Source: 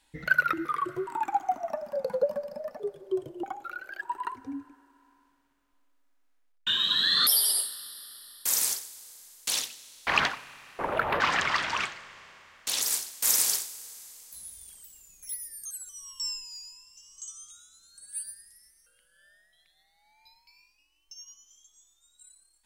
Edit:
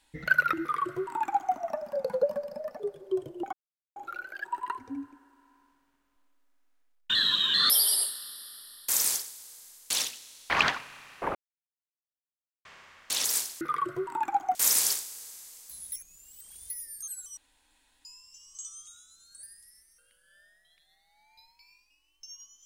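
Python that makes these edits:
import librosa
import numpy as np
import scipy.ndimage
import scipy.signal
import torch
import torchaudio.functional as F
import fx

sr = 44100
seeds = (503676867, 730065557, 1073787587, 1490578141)

y = fx.edit(x, sr, fx.duplicate(start_s=0.61, length_s=0.94, to_s=13.18),
    fx.insert_silence(at_s=3.53, length_s=0.43),
    fx.reverse_span(start_s=6.72, length_s=0.39),
    fx.silence(start_s=10.92, length_s=1.3),
    fx.reverse_span(start_s=14.55, length_s=0.78),
    fx.room_tone_fill(start_s=16.0, length_s=0.68),
    fx.cut(start_s=18.06, length_s=0.25), tone=tone)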